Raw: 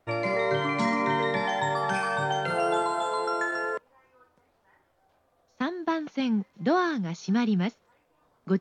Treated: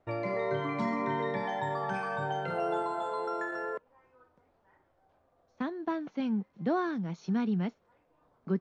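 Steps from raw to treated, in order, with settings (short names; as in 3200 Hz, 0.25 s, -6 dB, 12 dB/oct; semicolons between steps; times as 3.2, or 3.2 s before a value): LPF 7200 Hz 12 dB/oct; high shelf 2000 Hz -10.5 dB; in parallel at -2 dB: compressor, threshold -40 dBFS, peak gain reduction 18.5 dB; on the sum: gain -5.5 dB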